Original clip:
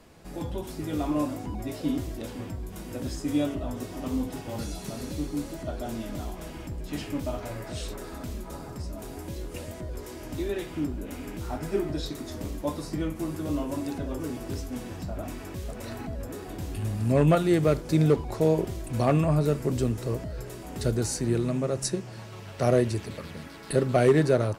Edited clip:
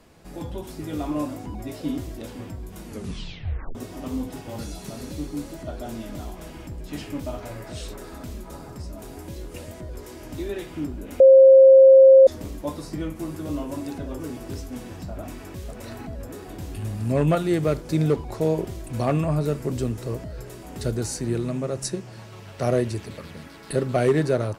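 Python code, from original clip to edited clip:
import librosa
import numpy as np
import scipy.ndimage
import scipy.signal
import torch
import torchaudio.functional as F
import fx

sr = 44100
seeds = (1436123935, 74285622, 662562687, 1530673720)

y = fx.edit(x, sr, fx.tape_stop(start_s=2.84, length_s=0.91),
    fx.bleep(start_s=11.2, length_s=1.07, hz=533.0, db=-7.0), tone=tone)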